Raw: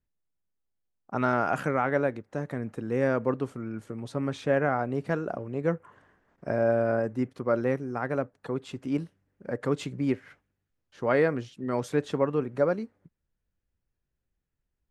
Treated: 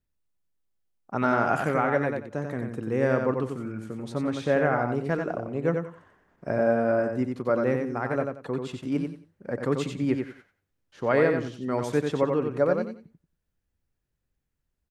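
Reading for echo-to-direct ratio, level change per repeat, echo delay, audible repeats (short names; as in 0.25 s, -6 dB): -4.5 dB, -12.5 dB, 91 ms, 3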